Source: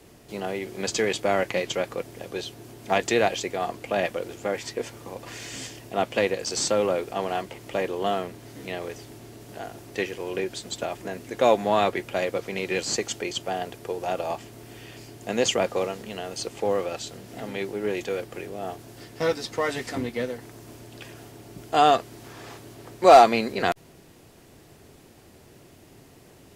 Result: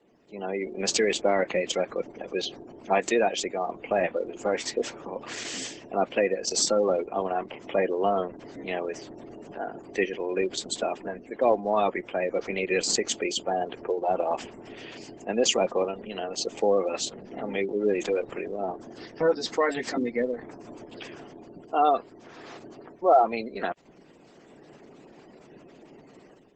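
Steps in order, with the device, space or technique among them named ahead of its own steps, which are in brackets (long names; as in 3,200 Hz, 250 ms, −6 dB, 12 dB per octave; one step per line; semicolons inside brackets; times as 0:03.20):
noise-suppressed video call (high-pass filter 170 Hz 24 dB per octave; gate on every frequency bin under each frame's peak −20 dB strong; automatic gain control gain up to 13 dB; level −9 dB; Opus 12 kbit/s 48,000 Hz)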